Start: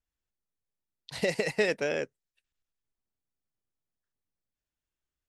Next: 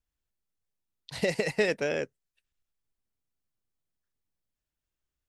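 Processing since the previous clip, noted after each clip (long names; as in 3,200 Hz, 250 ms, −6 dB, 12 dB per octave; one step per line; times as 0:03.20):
low-shelf EQ 180 Hz +4.5 dB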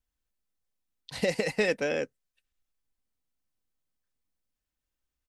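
comb filter 3.9 ms, depth 31%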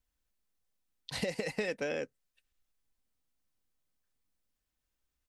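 downward compressor 4 to 1, threshold −34 dBFS, peak gain reduction 11 dB
level +1.5 dB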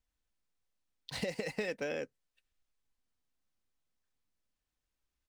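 running median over 3 samples
level −2 dB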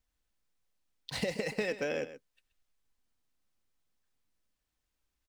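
single-tap delay 128 ms −13.5 dB
level +3 dB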